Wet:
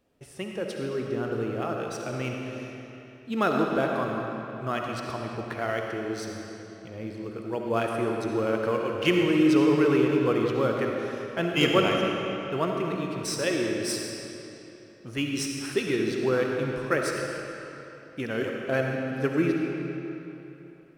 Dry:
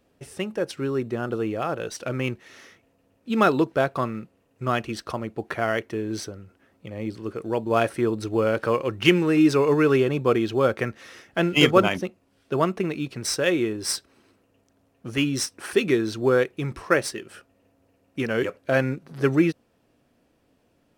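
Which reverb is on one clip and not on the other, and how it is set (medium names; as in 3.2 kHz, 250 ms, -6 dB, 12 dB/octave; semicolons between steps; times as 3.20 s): algorithmic reverb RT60 3.3 s, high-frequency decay 0.8×, pre-delay 25 ms, DRR 0.5 dB; trim -6 dB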